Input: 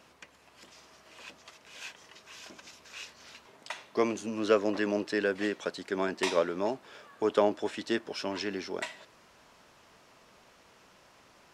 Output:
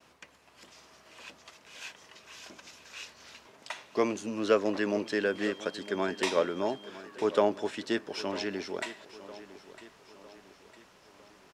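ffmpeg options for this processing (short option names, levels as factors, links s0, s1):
-filter_complex "[0:a]aecho=1:1:955|1910|2865|3820:0.15|0.0703|0.0331|0.0155,agate=range=0.0224:threshold=0.00126:ratio=3:detection=peak,asettb=1/sr,asplit=3[s0][s1][s2];[s0]atrim=end=5.064[s3];[s1]atrim=start=5.06:end=6.9,asetpts=PTS-STARTPTS,afade=t=in:d=0.004:c=qsin,afade=t=out:st=1.836:d=0.004:c=qsin,aeval=exprs='val(0)+0.00282*sin(2*PI*3200*n/s)':c=same[s4];[s2]atrim=start=6.896[s5];[s3][s4]acrossfade=d=0.004:c1=hsin:c2=qsin[s6];[s6][s5]acrossfade=d=0.004:c1=qsin:c2=hsin"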